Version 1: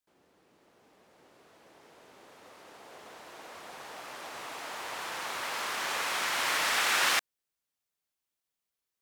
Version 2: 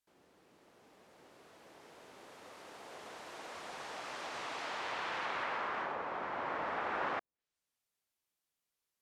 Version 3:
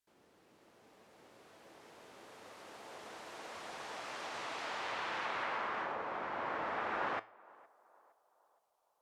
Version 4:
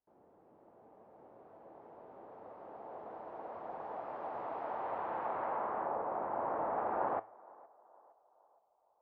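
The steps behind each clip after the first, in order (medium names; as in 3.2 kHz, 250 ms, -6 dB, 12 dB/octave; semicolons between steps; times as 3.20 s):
low-pass that closes with the level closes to 880 Hz, closed at -29 dBFS
feedback comb 110 Hz, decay 0.33 s, harmonics all, mix 50%; band-passed feedback delay 464 ms, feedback 52%, band-pass 710 Hz, level -22 dB; trim +4 dB
resonant low-pass 790 Hz, resonance Q 1.8; trim +1 dB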